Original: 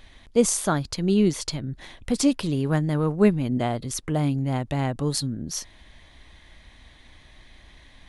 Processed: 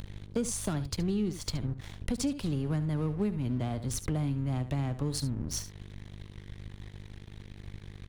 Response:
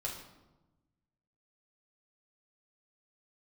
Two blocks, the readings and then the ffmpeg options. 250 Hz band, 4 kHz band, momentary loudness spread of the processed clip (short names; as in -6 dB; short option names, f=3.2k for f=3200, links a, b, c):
-8.5 dB, -8.0 dB, 16 LU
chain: -filter_complex "[0:a]acrossover=split=230|410|2800[a][b][c][d];[c]asoftclip=type=tanh:threshold=-27dB[e];[a][b][e][d]amix=inputs=4:normalize=0,aeval=exprs='val(0)+0.00794*(sin(2*PI*50*n/s)+sin(2*PI*2*50*n/s)/2+sin(2*PI*3*50*n/s)/3+sin(2*PI*4*50*n/s)/4+sin(2*PI*5*50*n/s)/5)':c=same,acompressor=mode=upward:threshold=-39dB:ratio=2.5,equalizer=f=100:w=2.4:g=5.5,aeval=exprs='sgn(val(0))*max(abs(val(0))-0.0112,0)':c=same,lowshelf=f=140:g=8,aecho=1:1:71:0.2,acompressor=threshold=-30dB:ratio=5,volume=1dB"